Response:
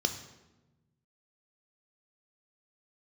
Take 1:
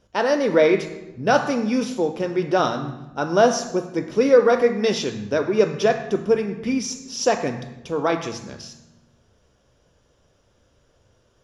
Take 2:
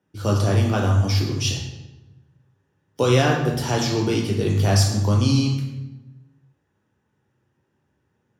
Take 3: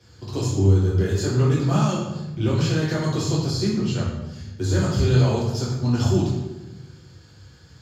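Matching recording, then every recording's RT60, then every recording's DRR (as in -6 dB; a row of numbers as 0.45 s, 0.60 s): 1; 1.1 s, 1.1 s, 1.1 s; 6.0 dB, -1.5 dB, -6.5 dB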